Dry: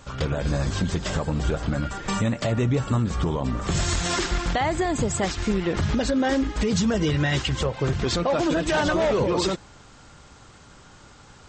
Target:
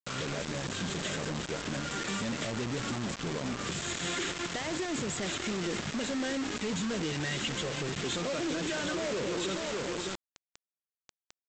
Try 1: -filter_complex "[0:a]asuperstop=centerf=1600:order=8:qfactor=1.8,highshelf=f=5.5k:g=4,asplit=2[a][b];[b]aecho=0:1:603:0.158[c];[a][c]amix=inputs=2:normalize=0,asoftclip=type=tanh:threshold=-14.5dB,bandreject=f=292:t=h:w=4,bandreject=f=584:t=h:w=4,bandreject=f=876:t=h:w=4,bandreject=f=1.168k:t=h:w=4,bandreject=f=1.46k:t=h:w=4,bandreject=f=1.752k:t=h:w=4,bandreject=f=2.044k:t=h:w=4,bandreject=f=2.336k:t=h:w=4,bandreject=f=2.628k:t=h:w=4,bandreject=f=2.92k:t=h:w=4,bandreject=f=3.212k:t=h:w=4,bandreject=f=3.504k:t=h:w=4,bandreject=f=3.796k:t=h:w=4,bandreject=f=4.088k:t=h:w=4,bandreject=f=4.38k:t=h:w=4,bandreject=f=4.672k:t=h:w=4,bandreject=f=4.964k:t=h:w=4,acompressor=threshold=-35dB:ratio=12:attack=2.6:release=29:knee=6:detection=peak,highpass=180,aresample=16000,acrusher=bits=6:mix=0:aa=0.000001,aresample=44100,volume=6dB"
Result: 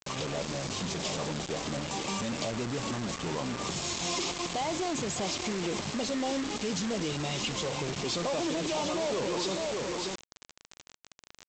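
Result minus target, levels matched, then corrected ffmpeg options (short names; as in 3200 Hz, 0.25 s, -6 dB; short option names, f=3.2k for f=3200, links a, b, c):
2000 Hz band -4.0 dB; 1000 Hz band +2.5 dB
-filter_complex "[0:a]asuperstop=centerf=5200:order=8:qfactor=1.8,highshelf=f=5.5k:g=4,asplit=2[a][b];[b]aecho=0:1:603:0.158[c];[a][c]amix=inputs=2:normalize=0,asoftclip=type=tanh:threshold=-14.5dB,bandreject=f=292:t=h:w=4,bandreject=f=584:t=h:w=4,bandreject=f=876:t=h:w=4,bandreject=f=1.168k:t=h:w=4,bandreject=f=1.46k:t=h:w=4,bandreject=f=1.752k:t=h:w=4,bandreject=f=2.044k:t=h:w=4,bandreject=f=2.336k:t=h:w=4,bandreject=f=2.628k:t=h:w=4,bandreject=f=2.92k:t=h:w=4,bandreject=f=3.212k:t=h:w=4,bandreject=f=3.504k:t=h:w=4,bandreject=f=3.796k:t=h:w=4,bandreject=f=4.088k:t=h:w=4,bandreject=f=4.38k:t=h:w=4,bandreject=f=4.672k:t=h:w=4,bandreject=f=4.964k:t=h:w=4,acompressor=threshold=-35dB:ratio=12:attack=2.6:release=29:knee=6:detection=peak,highpass=180,equalizer=f=860:w=1.9:g=-11.5,aresample=16000,acrusher=bits=6:mix=0:aa=0.000001,aresample=44100,volume=6dB"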